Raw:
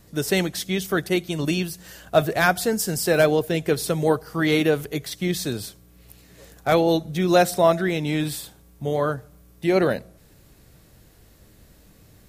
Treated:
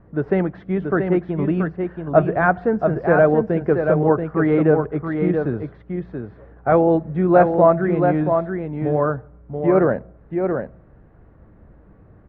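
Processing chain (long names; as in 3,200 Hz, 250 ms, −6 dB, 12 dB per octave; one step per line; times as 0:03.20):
low-pass filter 1,500 Hz 24 dB per octave
single-tap delay 681 ms −5.5 dB
level +3.5 dB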